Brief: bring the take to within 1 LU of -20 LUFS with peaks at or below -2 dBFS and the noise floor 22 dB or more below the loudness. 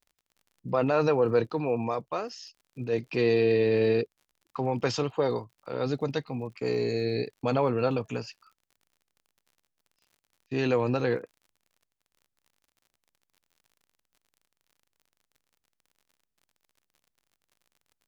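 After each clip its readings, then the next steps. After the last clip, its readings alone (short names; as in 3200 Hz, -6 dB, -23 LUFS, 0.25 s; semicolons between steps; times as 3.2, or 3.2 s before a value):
ticks 51/s; loudness -28.0 LUFS; peak -12.5 dBFS; loudness target -20.0 LUFS
-> de-click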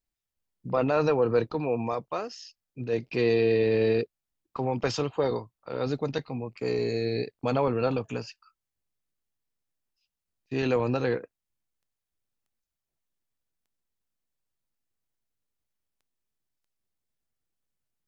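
ticks 0.28/s; loudness -28.0 LUFS; peak -12.5 dBFS; loudness target -20.0 LUFS
-> gain +8 dB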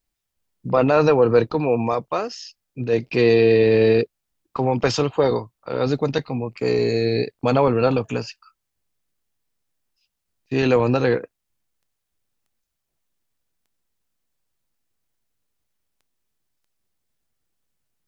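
loudness -20.0 LUFS; peak -4.5 dBFS; noise floor -79 dBFS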